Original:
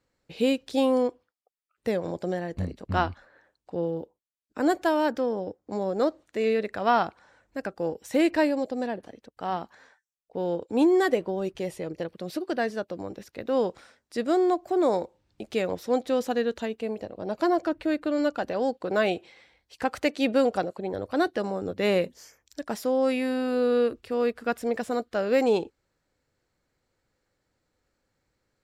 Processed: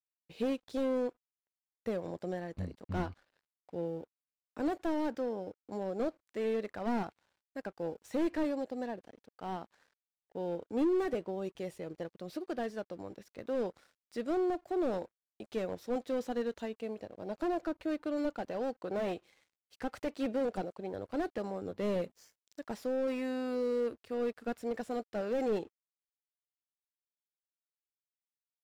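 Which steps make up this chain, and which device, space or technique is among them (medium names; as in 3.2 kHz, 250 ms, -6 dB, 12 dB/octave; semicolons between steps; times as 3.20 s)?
early transistor amplifier (crossover distortion -56 dBFS; slew-rate limiter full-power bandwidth 44 Hz); trim -8 dB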